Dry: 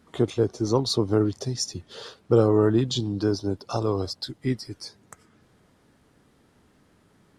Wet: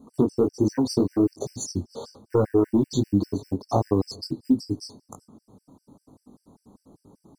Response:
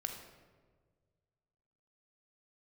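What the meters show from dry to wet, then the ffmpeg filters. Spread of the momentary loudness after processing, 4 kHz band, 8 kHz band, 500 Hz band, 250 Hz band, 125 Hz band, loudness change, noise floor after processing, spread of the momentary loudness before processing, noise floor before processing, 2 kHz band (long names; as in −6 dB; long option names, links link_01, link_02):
11 LU, −7.0 dB, −1.5 dB, −2.0 dB, +3.0 dB, −2.0 dB, 0.0 dB, −76 dBFS, 18 LU, −62 dBFS, can't be measured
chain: -filter_complex "[0:a]asuperstop=centerf=2100:order=8:qfactor=0.74,acrusher=bits=8:mode=log:mix=0:aa=0.000001,aeval=exprs='0.398*sin(PI/2*1.41*val(0)/0.398)':channel_layout=same,equalizer=frequency=250:width_type=o:width=1:gain=10,equalizer=frequency=1000:width_type=o:width=1:gain=4,equalizer=frequency=4000:width_type=o:width=1:gain=-5,acompressor=threshold=-13dB:ratio=6,flanger=delay=19:depth=3.1:speed=1.3,asplit=2[link_01][link_02];[1:a]atrim=start_sample=2205[link_03];[link_02][link_03]afir=irnorm=-1:irlink=0,volume=-17dB[link_04];[link_01][link_04]amix=inputs=2:normalize=0,afftfilt=real='re*gt(sin(2*PI*5.1*pts/sr)*(1-2*mod(floor(b*sr/1024/1500),2)),0)':imag='im*gt(sin(2*PI*5.1*pts/sr)*(1-2*mod(floor(b*sr/1024/1500),2)),0)':win_size=1024:overlap=0.75"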